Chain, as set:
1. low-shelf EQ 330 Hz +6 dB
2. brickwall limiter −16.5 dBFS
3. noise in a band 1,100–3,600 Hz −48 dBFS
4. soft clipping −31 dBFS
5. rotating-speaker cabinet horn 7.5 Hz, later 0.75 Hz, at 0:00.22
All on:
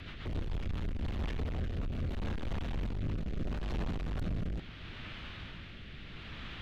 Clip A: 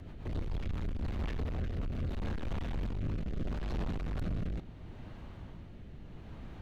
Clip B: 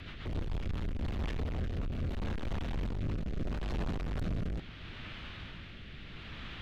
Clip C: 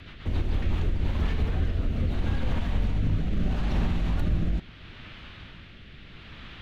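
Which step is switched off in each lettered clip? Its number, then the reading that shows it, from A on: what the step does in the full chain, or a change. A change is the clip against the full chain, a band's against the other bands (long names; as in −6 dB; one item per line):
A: 3, 4 kHz band −6.5 dB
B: 2, average gain reduction 2.5 dB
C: 4, distortion level −7 dB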